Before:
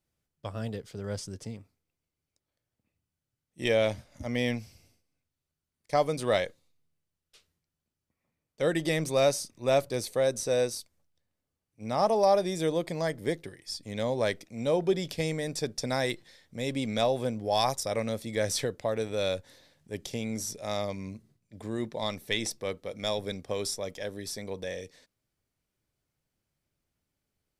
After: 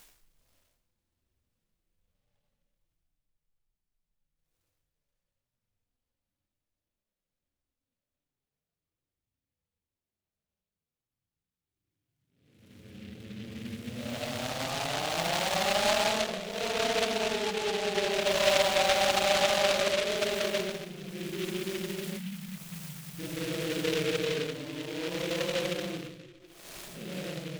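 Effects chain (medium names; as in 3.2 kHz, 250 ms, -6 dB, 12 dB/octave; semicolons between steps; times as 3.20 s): Paulstretch 13×, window 0.05 s, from 10.82 s; spectral selection erased 22.18–23.19 s, 270–5300 Hz; delay time shaken by noise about 2.5 kHz, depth 0.17 ms; trim -5 dB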